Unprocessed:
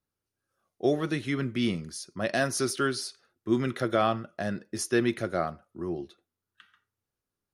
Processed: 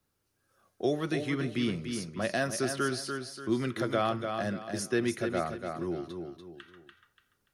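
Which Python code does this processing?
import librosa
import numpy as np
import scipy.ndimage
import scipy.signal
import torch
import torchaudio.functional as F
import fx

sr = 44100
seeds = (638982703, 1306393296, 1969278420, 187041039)

p1 = x + fx.echo_feedback(x, sr, ms=290, feedback_pct=27, wet_db=-8.0, dry=0)
p2 = fx.band_squash(p1, sr, depth_pct=40)
y = p2 * librosa.db_to_amplitude(-3.0)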